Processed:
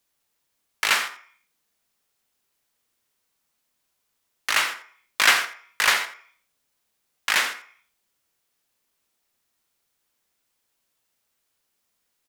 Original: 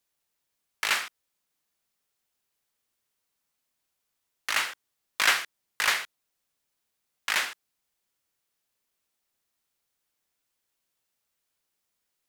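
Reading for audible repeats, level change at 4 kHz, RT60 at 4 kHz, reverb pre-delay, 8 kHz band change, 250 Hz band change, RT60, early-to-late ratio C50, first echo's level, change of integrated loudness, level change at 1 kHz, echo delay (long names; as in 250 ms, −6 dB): 1, +5.5 dB, 0.60 s, 21 ms, +5.0 dB, +6.0 dB, 0.50 s, 11.0 dB, −15.5 dB, +5.0 dB, +6.0 dB, 87 ms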